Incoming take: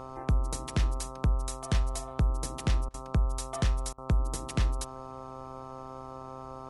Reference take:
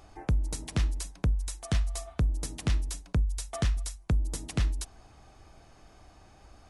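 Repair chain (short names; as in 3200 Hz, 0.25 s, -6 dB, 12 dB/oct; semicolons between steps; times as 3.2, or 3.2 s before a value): de-hum 131.2 Hz, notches 10; notch 530 Hz, Q 30; interpolate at 2.89/3.93, 49 ms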